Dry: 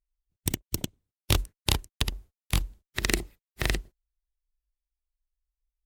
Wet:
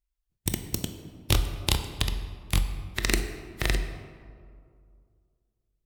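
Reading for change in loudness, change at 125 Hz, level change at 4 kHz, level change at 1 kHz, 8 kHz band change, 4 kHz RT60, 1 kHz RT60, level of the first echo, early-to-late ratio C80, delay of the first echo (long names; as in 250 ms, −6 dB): +1.0 dB, +2.0 dB, +0.5 dB, +1.0 dB, +0.5 dB, 1.0 s, 2.1 s, no echo audible, 10.0 dB, no echo audible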